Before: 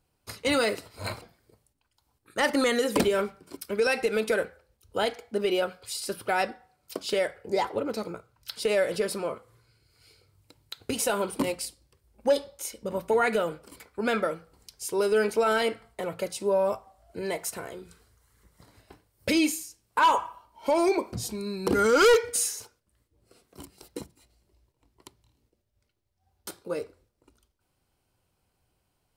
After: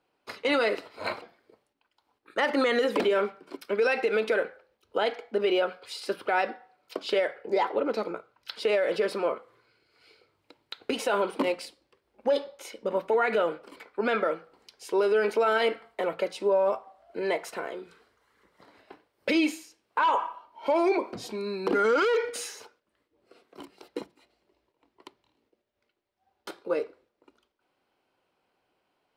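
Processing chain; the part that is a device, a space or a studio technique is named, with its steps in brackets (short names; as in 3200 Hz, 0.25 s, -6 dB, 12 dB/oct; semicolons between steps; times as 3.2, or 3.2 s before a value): DJ mixer with the lows and highs turned down (three-band isolator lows -24 dB, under 240 Hz, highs -19 dB, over 4000 Hz; limiter -21 dBFS, peak gain reduction 11.5 dB); 15.21–16.16 high shelf 8600 Hz +6.5 dB; gain +4.5 dB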